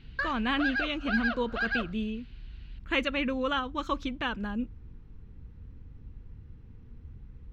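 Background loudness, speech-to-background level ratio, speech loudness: −32.5 LKFS, 1.0 dB, −31.5 LKFS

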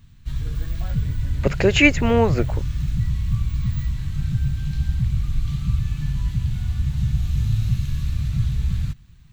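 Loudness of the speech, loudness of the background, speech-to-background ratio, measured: −19.0 LKFS, −25.0 LKFS, 6.0 dB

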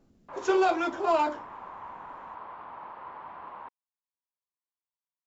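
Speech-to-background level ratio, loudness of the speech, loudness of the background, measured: 16.5 dB, −27.0 LKFS, −43.5 LKFS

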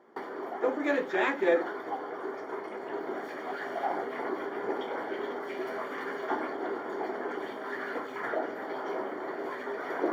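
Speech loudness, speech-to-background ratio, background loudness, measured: −29.0 LKFS, 6.5 dB, −35.5 LKFS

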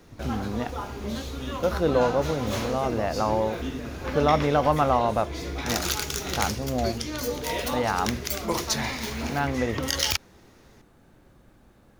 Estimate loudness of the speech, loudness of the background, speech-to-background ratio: −27.0 LKFS, −30.5 LKFS, 3.5 dB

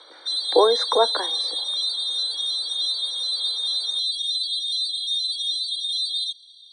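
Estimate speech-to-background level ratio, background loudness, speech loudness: 1.0 dB, −23.0 LKFS, −22.0 LKFS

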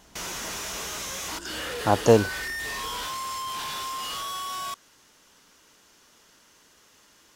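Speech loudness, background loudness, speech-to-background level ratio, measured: −22.5 LKFS, −32.0 LKFS, 9.5 dB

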